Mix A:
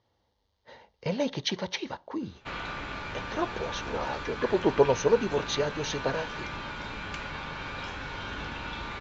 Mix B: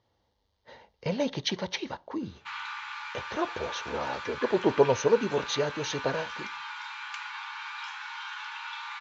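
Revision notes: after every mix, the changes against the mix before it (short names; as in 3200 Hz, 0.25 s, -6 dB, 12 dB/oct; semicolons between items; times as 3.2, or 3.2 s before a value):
background: add brick-wall FIR high-pass 790 Hz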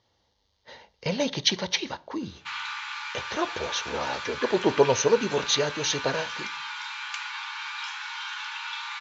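speech: send +8.5 dB; master: add high shelf 2400 Hz +10 dB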